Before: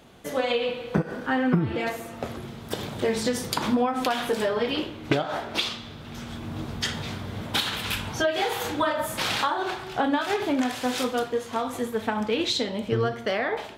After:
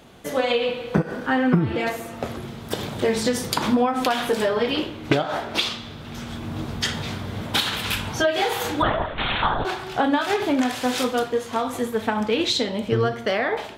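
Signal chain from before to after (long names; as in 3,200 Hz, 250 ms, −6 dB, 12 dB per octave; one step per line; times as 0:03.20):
0:08.82–0:09.65: linear-prediction vocoder at 8 kHz whisper
level +3.5 dB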